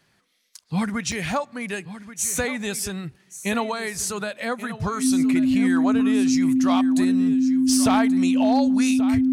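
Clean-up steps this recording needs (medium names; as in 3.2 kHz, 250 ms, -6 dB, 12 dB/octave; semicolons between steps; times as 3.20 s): clip repair -12 dBFS; band-stop 260 Hz, Q 30; interpolate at 1.12 s, 3.8 ms; inverse comb 1131 ms -14 dB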